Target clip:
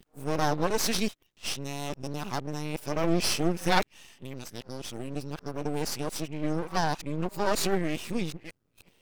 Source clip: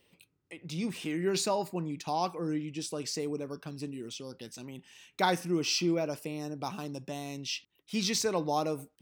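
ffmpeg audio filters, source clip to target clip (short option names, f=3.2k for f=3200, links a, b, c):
-af "areverse,aeval=exprs='max(val(0),0)':c=same,volume=6.5dB"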